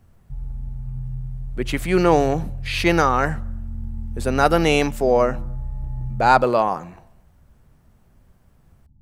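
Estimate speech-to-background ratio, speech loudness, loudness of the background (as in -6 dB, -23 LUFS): 13.5 dB, -19.5 LUFS, -33.0 LUFS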